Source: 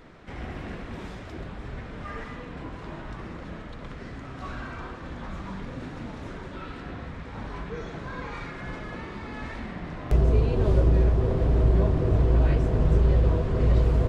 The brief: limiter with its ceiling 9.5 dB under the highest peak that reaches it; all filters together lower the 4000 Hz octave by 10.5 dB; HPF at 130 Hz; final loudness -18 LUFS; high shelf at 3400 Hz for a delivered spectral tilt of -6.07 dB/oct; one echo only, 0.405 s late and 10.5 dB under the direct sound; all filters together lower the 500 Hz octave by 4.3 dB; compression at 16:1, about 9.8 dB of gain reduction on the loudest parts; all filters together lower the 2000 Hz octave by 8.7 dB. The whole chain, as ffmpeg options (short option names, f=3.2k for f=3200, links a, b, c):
-af "highpass=130,equalizer=f=500:t=o:g=-5,equalizer=f=2k:t=o:g=-8,highshelf=f=3.4k:g=-7.5,equalizer=f=4k:t=o:g=-5.5,acompressor=threshold=-33dB:ratio=16,alimiter=level_in=7.5dB:limit=-24dB:level=0:latency=1,volume=-7.5dB,aecho=1:1:405:0.299,volume=23.5dB"